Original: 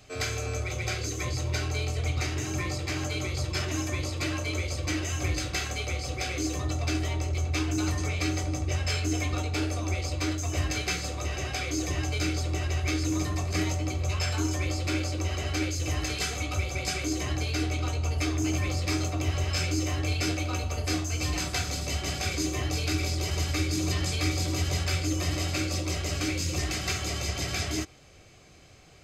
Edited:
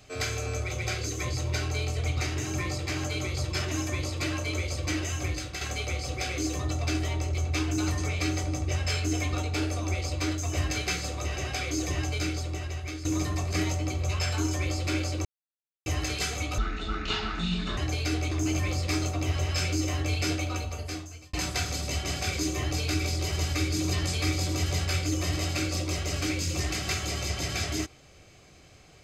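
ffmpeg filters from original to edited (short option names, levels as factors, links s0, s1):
-filter_complex "[0:a]asplit=9[s0][s1][s2][s3][s4][s5][s6][s7][s8];[s0]atrim=end=5.61,asetpts=PTS-STARTPTS,afade=t=out:st=5.05:d=0.56:silence=0.446684[s9];[s1]atrim=start=5.61:end=13.05,asetpts=PTS-STARTPTS,afade=t=in:d=0.004:c=hsin:silence=0.446684,afade=t=out:st=6.39:d=1.05:silence=0.298538[s10];[s2]atrim=start=13.05:end=15.25,asetpts=PTS-STARTPTS,afade=t=in:d=0.004:c=hsin:silence=0.298538,afade=t=out:st=2.196:d=0.004:c=hsin[s11];[s3]atrim=start=15.25:end=15.86,asetpts=PTS-STARTPTS,volume=0[s12];[s4]atrim=start=15.86:end=16.584,asetpts=PTS-STARTPTS,afade=t=in:d=0.004:c=hsin[s13];[s5]atrim=start=16.58:end=17.26,asetpts=PTS-STARTPTS,asetrate=25137,aresample=44100[s14];[s6]atrim=start=17.256:end=17.802[s15];[s7]atrim=start=18.298:end=21.32,asetpts=PTS-STARTPTS,afade=t=out:st=2.102:d=0.92[s16];[s8]atrim=start=21.32,asetpts=PTS-STARTPTS,afade=t=in:d=0.004:c=hsin[s17];[s9][s10][s11][s12][s13]concat=n=5:v=0:a=1[s18];[s18][s14]acrossfade=d=0.004:c1=hsin:c2=hsin[s19];[s19][s15]acrossfade=d=0.004:c1=hsin:c2=hsin[s20];[s16][s17]concat=n=2:v=0:a=1[s21];[s20][s21]acrossfade=d=0.004:c1=hsin:c2=hsin"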